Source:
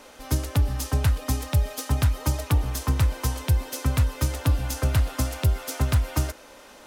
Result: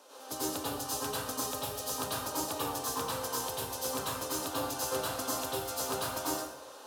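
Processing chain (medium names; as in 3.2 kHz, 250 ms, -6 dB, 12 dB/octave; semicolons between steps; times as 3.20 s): high-pass 420 Hz 12 dB/octave; peaking EQ 2.1 kHz -12 dB 0.63 oct; plate-style reverb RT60 0.8 s, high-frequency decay 0.65×, pre-delay 80 ms, DRR -7.5 dB; trim -7.5 dB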